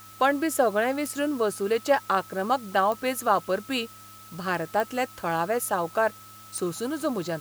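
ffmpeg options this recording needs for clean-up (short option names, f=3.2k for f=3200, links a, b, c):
-af "adeclick=t=4,bandreject=f=105.8:t=h:w=4,bandreject=f=211.6:t=h:w=4,bandreject=f=317.4:t=h:w=4,bandreject=f=1.3k:w=30,afwtdn=0.0032"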